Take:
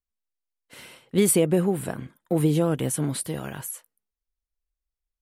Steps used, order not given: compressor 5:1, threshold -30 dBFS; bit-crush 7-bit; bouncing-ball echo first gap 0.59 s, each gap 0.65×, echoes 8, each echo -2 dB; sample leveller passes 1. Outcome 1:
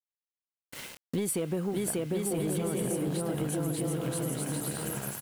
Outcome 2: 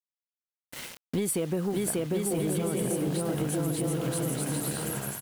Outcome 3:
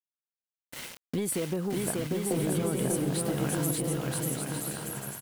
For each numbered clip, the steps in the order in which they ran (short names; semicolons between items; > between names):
bouncing-ball echo > sample leveller > bit-crush > compressor; bit-crush > bouncing-ball echo > compressor > sample leveller; bit-crush > sample leveller > compressor > bouncing-ball echo